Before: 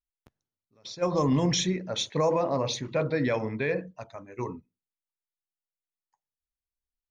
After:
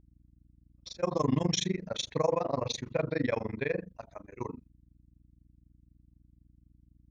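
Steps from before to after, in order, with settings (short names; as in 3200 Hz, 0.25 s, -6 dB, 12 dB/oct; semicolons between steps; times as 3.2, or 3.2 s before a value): gate -53 dBFS, range -24 dB; hum 60 Hz, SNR 26 dB; AM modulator 24 Hz, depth 100%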